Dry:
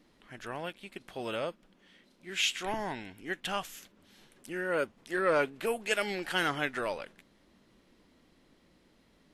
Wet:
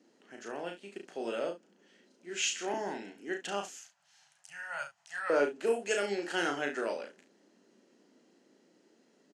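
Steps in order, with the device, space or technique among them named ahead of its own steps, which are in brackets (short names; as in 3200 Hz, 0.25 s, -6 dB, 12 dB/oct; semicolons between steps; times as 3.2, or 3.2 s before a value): television speaker (speaker cabinet 210–8500 Hz, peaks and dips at 400 Hz +5 dB, 1100 Hz -8 dB, 2200 Hz -7 dB, 3600 Hz -9 dB, 6600 Hz +6 dB); 3.74–5.3 elliptic band-stop 140–740 Hz, stop band 40 dB; early reflections 35 ms -4.5 dB, 69 ms -12.5 dB; gain -1.5 dB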